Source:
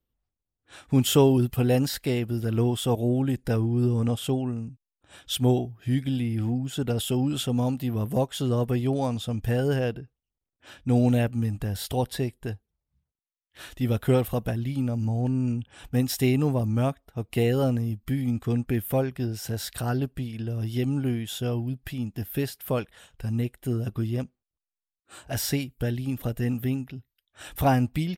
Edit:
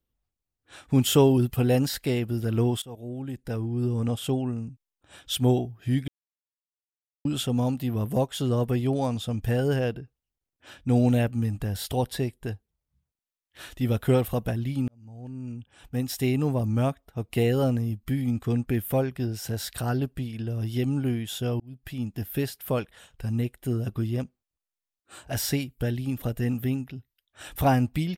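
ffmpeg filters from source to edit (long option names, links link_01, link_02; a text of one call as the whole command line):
ffmpeg -i in.wav -filter_complex "[0:a]asplit=6[link_01][link_02][link_03][link_04][link_05][link_06];[link_01]atrim=end=2.82,asetpts=PTS-STARTPTS,afade=type=out:start_time=2.816:duration=0.004:curve=hsin:silence=0.0944061[link_07];[link_02]atrim=start=2.82:end=6.08,asetpts=PTS-STARTPTS,afade=type=in:duration=1.58:silence=0.0944061,afade=type=out:start_time=3.256:duration=0.004:curve=hsin[link_08];[link_03]atrim=start=6.08:end=7.25,asetpts=PTS-STARTPTS,volume=0[link_09];[link_04]atrim=start=7.25:end=14.88,asetpts=PTS-STARTPTS,afade=type=in:duration=0.004:curve=hsin,afade=type=out:start_time=7.626:duration=0.004:curve=hsin[link_10];[link_05]atrim=start=14.88:end=21.6,asetpts=PTS-STARTPTS,afade=type=in:duration=1.86,afade=type=out:start_time=6.716:duration=0.004:curve=hsin[link_11];[link_06]atrim=start=21.6,asetpts=PTS-STARTPTS,afade=type=in:duration=0.42[link_12];[link_07][link_08][link_09][link_10][link_11][link_12]concat=n=6:v=0:a=1" out.wav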